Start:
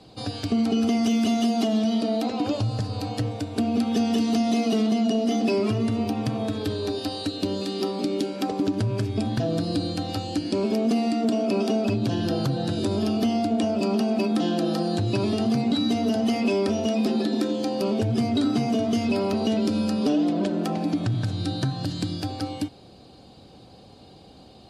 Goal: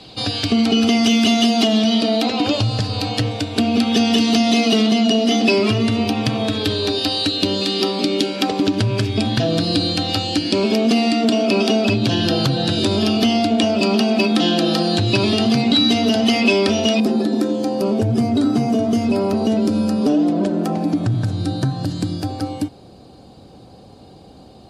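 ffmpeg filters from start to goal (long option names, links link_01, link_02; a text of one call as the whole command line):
ffmpeg -i in.wav -af "asetnsamples=nb_out_samples=441:pad=0,asendcmd='17 equalizer g -6',equalizer=frequency=3200:width=0.71:gain=10,volume=6dB" out.wav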